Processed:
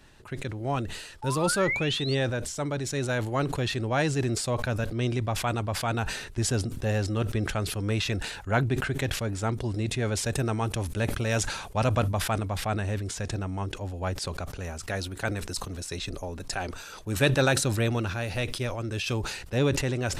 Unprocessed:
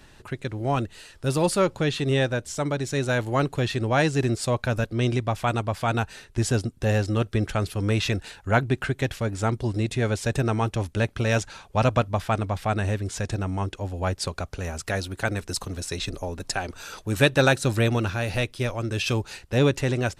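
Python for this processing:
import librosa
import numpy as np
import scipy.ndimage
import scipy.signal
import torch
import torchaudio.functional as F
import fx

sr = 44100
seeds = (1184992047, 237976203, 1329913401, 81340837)

y = fx.spec_paint(x, sr, seeds[0], shape='rise', start_s=1.22, length_s=0.93, low_hz=840.0, high_hz=4700.0, level_db=-32.0)
y = fx.peak_eq(y, sr, hz=11000.0, db=6.5, octaves=0.95, at=(10.26, 12.58))
y = fx.sustainer(y, sr, db_per_s=56.0)
y = F.gain(torch.from_numpy(y), -4.5).numpy()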